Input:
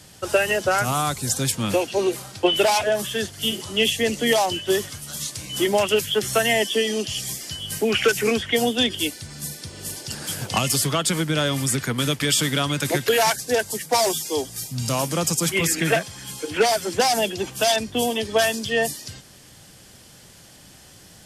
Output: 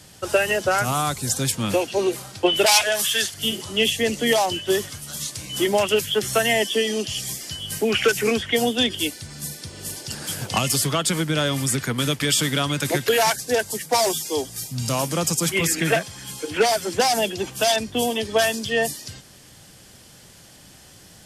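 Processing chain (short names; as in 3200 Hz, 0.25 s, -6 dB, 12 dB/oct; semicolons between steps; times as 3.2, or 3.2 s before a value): 2.66–3.34 tilt shelf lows -9.5 dB, about 930 Hz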